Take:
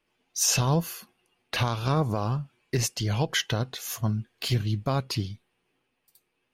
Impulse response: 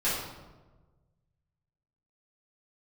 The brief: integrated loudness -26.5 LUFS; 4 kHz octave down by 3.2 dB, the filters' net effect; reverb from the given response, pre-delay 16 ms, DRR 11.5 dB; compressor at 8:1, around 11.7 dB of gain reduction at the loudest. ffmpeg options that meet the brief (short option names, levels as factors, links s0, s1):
-filter_complex "[0:a]equalizer=f=4000:t=o:g=-4.5,acompressor=threshold=0.0224:ratio=8,asplit=2[s0][s1];[1:a]atrim=start_sample=2205,adelay=16[s2];[s1][s2]afir=irnorm=-1:irlink=0,volume=0.0794[s3];[s0][s3]amix=inputs=2:normalize=0,volume=3.55"